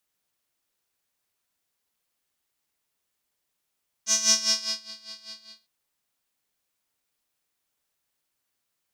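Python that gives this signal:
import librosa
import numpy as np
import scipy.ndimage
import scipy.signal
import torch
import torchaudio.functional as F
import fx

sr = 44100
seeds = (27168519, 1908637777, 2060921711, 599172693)

y = fx.sub_patch_tremolo(sr, seeds[0], note=57, wave='square', wave2='saw', interval_st=0, detune_cents=14, level2_db=-8.0, sub_db=-22.0, noise_db=-30.0, kind='bandpass', cutoff_hz=4400.0, q=8.8, env_oct=0.5, env_decay_s=0.84, env_sustain_pct=25, attack_ms=100.0, decay_s=0.68, sustain_db=-24.0, release_s=0.38, note_s=1.23, lfo_hz=5.0, tremolo_db=15)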